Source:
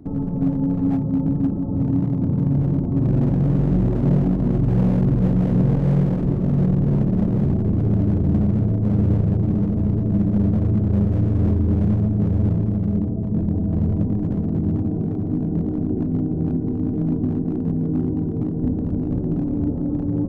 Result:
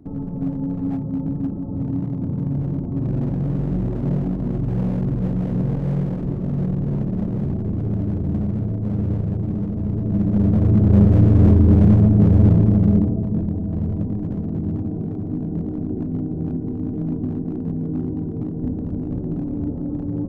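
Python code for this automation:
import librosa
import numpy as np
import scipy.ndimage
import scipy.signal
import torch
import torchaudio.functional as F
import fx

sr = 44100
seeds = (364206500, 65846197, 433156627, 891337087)

y = fx.gain(x, sr, db=fx.line((9.79, -4.0), (10.99, 6.0), (12.9, 6.0), (13.57, -3.0)))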